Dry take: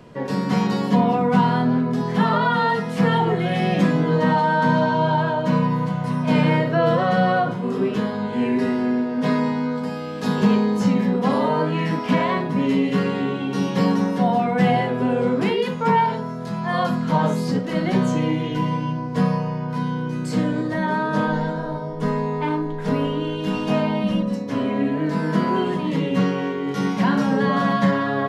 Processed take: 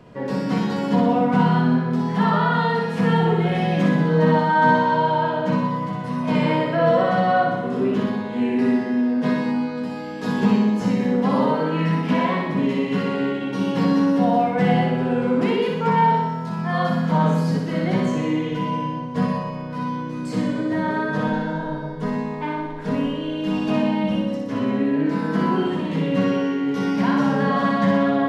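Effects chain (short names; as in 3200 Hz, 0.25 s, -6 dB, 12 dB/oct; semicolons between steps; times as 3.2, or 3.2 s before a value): high shelf 4400 Hz -5.5 dB; on a send: flutter echo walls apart 10.5 m, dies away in 0.97 s; on the sum: gain -2 dB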